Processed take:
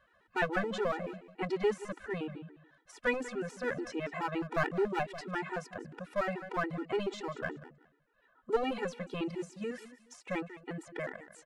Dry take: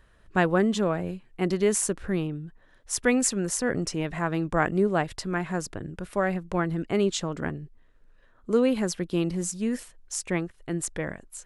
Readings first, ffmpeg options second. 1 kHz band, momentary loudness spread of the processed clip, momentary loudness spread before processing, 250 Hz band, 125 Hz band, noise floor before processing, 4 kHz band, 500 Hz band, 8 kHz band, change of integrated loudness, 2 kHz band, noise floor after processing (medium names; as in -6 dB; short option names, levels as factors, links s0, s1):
-5.0 dB, 11 LU, 11 LU, -12.0 dB, -13.0 dB, -59 dBFS, -9.5 dB, -7.0 dB, -24.0 dB, -8.5 dB, -5.0 dB, -70 dBFS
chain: -filter_complex "[0:a]deesser=0.7,bandpass=f=1100:t=q:w=0.56:csg=0,acrossover=split=1600[s0][s1];[s0]aeval=exprs='clip(val(0),-1,0.0398)':c=same[s2];[s2][s1]amix=inputs=2:normalize=0,aecho=1:1:191|382:0.188|0.0414,afftfilt=real='re*gt(sin(2*PI*7*pts/sr)*(1-2*mod(floor(b*sr/1024/250),2)),0)':imag='im*gt(sin(2*PI*7*pts/sr)*(1-2*mod(floor(b*sr/1024/250),2)),0)':win_size=1024:overlap=0.75,volume=1.19"